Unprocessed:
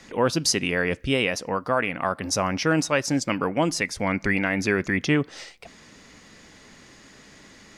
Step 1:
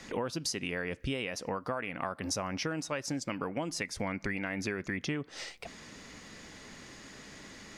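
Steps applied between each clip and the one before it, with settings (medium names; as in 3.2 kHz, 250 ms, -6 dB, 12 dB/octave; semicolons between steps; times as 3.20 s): compression 10:1, threshold -31 dBFS, peak gain reduction 15 dB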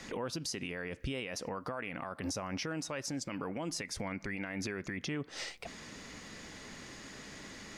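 peak limiter -29.5 dBFS, peak gain reduction 9.5 dB; trim +1 dB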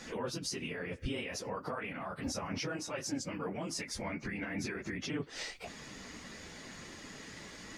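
phase randomisation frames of 50 ms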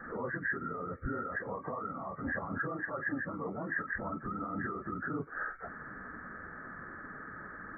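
knee-point frequency compression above 1.1 kHz 4:1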